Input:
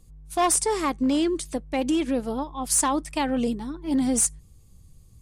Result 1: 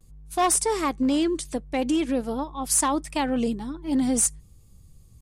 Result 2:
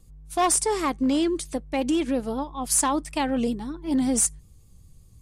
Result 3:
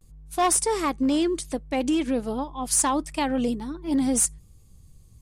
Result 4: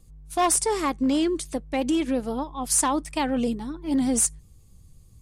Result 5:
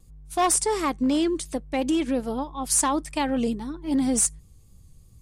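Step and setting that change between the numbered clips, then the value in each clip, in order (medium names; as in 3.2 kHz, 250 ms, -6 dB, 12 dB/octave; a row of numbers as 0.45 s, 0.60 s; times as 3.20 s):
vibrato, rate: 0.48 Hz, 5.2 Hz, 0.32 Hz, 7.9 Hz, 2.8 Hz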